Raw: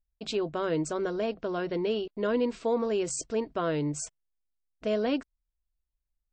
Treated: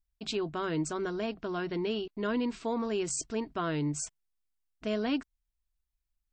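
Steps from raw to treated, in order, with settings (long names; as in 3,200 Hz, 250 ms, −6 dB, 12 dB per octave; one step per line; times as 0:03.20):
parametric band 530 Hz −12 dB 0.5 octaves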